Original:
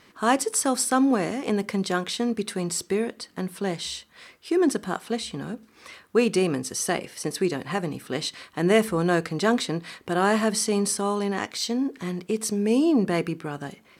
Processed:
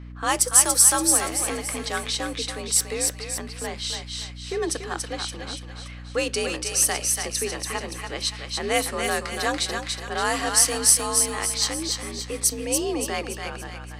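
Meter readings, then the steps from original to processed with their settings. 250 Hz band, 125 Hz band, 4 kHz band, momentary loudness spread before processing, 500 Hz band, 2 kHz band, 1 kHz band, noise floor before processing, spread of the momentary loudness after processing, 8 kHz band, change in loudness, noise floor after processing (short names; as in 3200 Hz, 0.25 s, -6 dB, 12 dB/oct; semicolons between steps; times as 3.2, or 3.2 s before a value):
-9.5 dB, -4.0 dB, +5.5 dB, 11 LU, -4.0 dB, +2.0 dB, -0.5 dB, -57 dBFS, 15 LU, +11.0 dB, +3.0 dB, -38 dBFS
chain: RIAA curve recording; low-pass opened by the level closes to 2100 Hz, open at -14.5 dBFS; frequency shift +54 Hz; hum 60 Hz, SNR 12 dB; on a send: thinning echo 0.286 s, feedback 47%, high-pass 790 Hz, level -3.5 dB; on the sum: gain -2 dB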